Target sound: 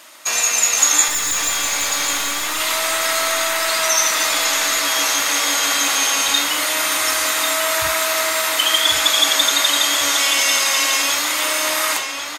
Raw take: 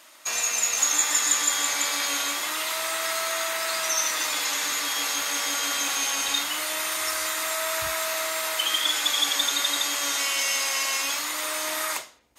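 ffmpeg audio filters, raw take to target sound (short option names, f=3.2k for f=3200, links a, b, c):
-filter_complex "[0:a]asettb=1/sr,asplit=3[a][b][c];[a]atrim=end=1.084[d];[b]atrim=start=1.08:end=2.6,asetpts=PTS-STARTPTS,afade=t=in:d=0.004:c=qsin,afade=t=out:st=1.516:d=0.004:c=qsin,aeval=exprs='(tanh(17.8*val(0)+0.35)-tanh(0.35))/17.8':c=same[e];[c]atrim=start=2.596[f];[d][e]acrossfade=d=0.004:c1=hsin:c2=qsin[g];[g][f]acrossfade=d=0.004:c1=qsin:c2=hsin,asplit=2[h][i];[i]adelay=1095,lowpass=f=4.8k:p=1,volume=-6dB,asplit=2[j][k];[k]adelay=1095,lowpass=f=4.8k:p=1,volume=0.46,asplit=2[l][m];[m]adelay=1095,lowpass=f=4.8k:p=1,volume=0.46,asplit=2[n][o];[o]adelay=1095,lowpass=f=4.8k:p=1,volume=0.46,asplit=2[p][q];[q]adelay=1095,lowpass=f=4.8k:p=1,volume=0.46,asplit=2[r][s];[s]adelay=1095,lowpass=f=4.8k:p=1,volume=0.46[t];[h][j][l][n][p][r][t]amix=inputs=7:normalize=0,volume=8dB"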